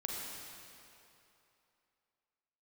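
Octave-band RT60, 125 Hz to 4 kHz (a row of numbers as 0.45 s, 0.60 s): 2.6 s, 2.6 s, 2.9 s, 3.0 s, 2.6 s, 2.4 s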